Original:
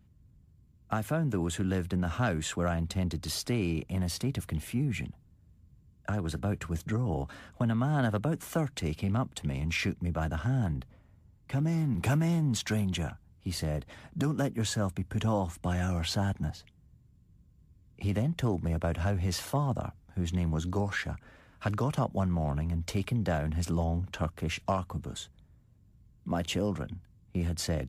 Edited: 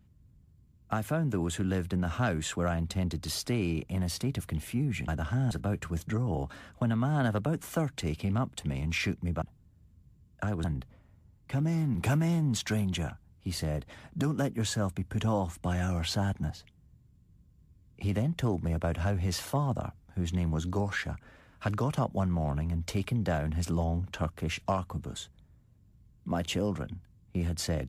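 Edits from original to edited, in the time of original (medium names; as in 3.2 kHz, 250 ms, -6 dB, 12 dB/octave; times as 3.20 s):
5.08–6.30 s: swap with 10.21–10.64 s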